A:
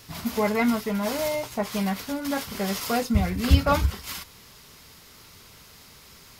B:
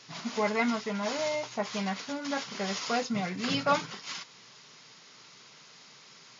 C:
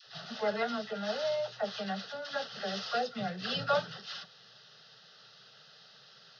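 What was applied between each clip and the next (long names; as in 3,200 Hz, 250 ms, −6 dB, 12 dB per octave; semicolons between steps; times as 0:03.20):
low-shelf EQ 470 Hz −7 dB; brick-wall band-pass 110–7,200 Hz; level −1.5 dB
phaser with its sweep stopped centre 1,500 Hz, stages 8; all-pass dispersion lows, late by 65 ms, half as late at 630 Hz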